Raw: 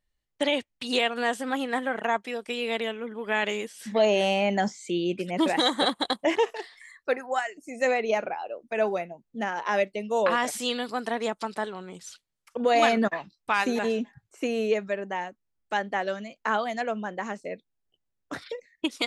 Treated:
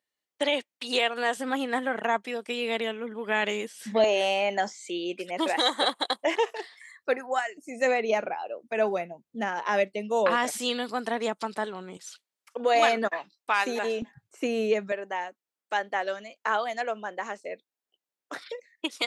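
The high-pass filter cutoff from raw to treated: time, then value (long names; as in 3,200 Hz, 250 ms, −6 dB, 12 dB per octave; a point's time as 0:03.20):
320 Hz
from 0:01.37 100 Hz
from 0:04.04 420 Hz
from 0:06.51 120 Hz
from 0:11.97 370 Hz
from 0:14.02 100 Hz
from 0:14.92 400 Hz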